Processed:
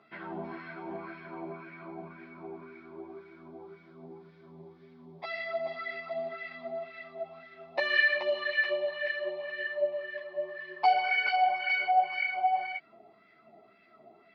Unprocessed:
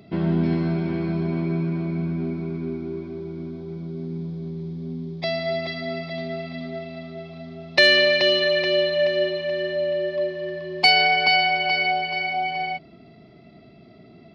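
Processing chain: in parallel at +2.5 dB: compression, threshold -28 dBFS, peak gain reduction 15.5 dB; on the sum: wah-wah 1.9 Hz 770–1800 Hz, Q 2.9; three-phase chorus

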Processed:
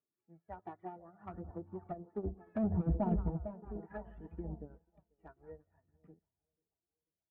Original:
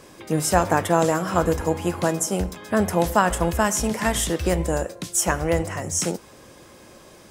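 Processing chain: spectral contrast enhancement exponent 1.5; Doppler pass-by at 2.69 s, 23 m/s, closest 11 m; low-pass 2.1 kHz 24 dB/octave; on a send: two-band feedback delay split 870 Hz, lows 488 ms, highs 167 ms, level -12.5 dB; on the sum: hard clipper -22 dBFS, distortion -7 dB; phaser 0.66 Hz, delay 2.9 ms, feedback 42%; low-pass that closes with the level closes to 500 Hz, closed at -24.5 dBFS; comb of notches 530 Hz; de-hum 195.5 Hz, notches 2; upward expansion 2.5:1, over -48 dBFS; trim -2.5 dB

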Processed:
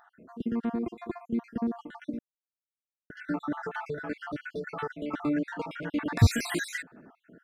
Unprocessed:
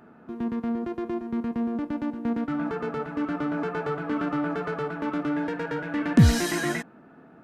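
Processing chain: random holes in the spectrogram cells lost 58%; 2.19–3.10 s: mute; 3.63–5.14 s: dynamic bell 240 Hz, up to -6 dB, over -41 dBFS, Q 0.77

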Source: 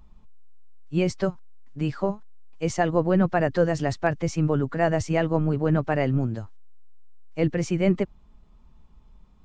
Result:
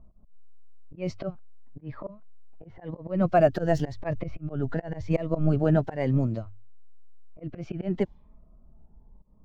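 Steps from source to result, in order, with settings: median filter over 5 samples; hum notches 50/100 Hz; slow attack 110 ms; peaking EQ 640 Hz +8.5 dB 0.41 oct; level-controlled noise filter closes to 750 Hz, open at -20.5 dBFS; slow attack 207 ms; 3.58–5.64 s: bass shelf 63 Hz +10.5 dB; level-controlled noise filter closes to 2.1 kHz, open at -18 dBFS; Shepard-style phaser rising 0.95 Hz

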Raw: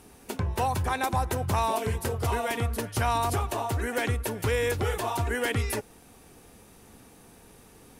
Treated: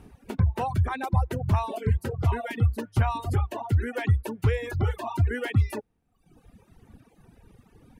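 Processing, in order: reverb removal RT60 1.3 s; tone controls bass +10 dB, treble -11 dB; reverb removal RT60 0.86 s; trim -1.5 dB

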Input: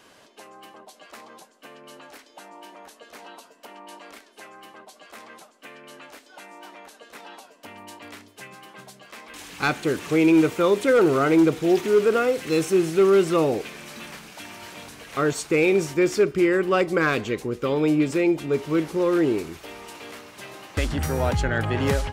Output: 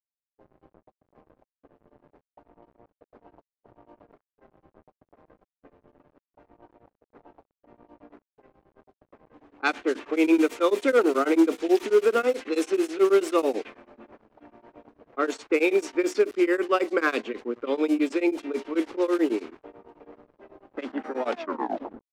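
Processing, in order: tape stop on the ending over 0.89 s; steep high-pass 230 Hz 72 dB/octave; small samples zeroed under -40.5 dBFS; level-controlled noise filter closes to 510 Hz, open at -16.5 dBFS; tremolo of two beating tones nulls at 9.2 Hz

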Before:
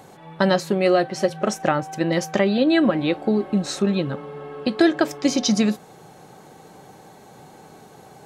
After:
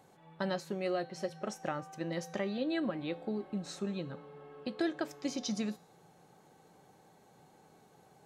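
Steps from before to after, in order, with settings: feedback comb 170 Hz, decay 0.8 s, harmonics odd, mix 60%; trim -8.5 dB

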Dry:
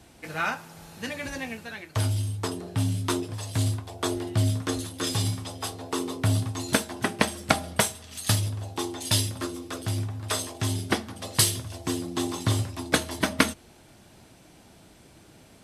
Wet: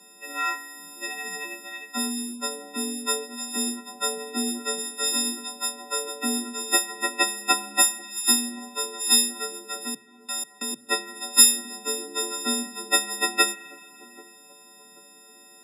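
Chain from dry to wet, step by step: partials quantised in pitch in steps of 6 st; 9.87–10.89 s: level held to a coarse grid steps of 24 dB; spring tank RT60 2.5 s, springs 33 ms, chirp 55 ms, DRR 15.5 dB; frequency shift +130 Hz; spectral gate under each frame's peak -30 dB strong; on a send: feedback echo behind a low-pass 785 ms, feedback 42%, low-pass 780 Hz, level -19 dB; on the sum: trim -5.5 dB

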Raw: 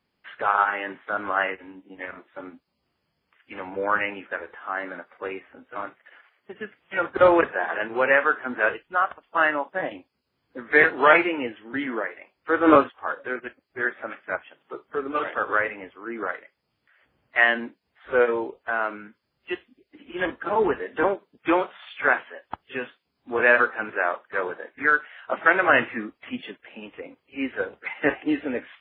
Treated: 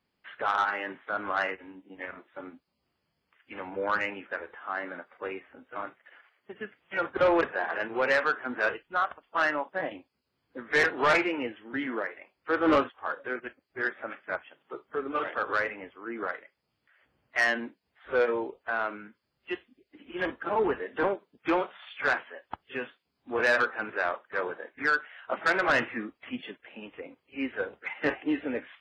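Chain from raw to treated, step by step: saturation -13 dBFS, distortion -13 dB; trim -3.5 dB

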